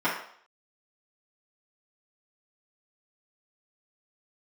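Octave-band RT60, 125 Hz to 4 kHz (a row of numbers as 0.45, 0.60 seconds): 0.35, 0.45, 0.60, 0.60, 0.55, 0.60 seconds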